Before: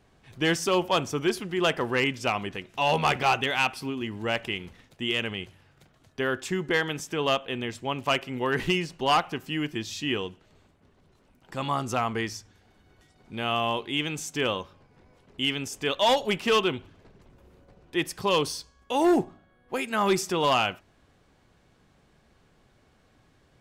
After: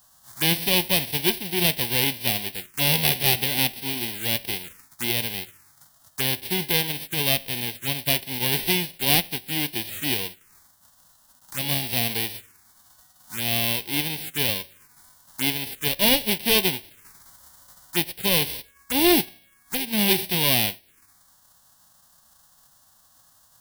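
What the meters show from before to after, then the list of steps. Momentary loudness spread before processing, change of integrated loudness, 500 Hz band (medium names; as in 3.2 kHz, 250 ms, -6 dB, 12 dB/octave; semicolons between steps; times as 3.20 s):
11 LU, +4.5 dB, -3.0 dB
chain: formants flattened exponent 0.1; touch-sensitive phaser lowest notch 390 Hz, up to 1.3 kHz, full sweep at -29 dBFS; trim +5.5 dB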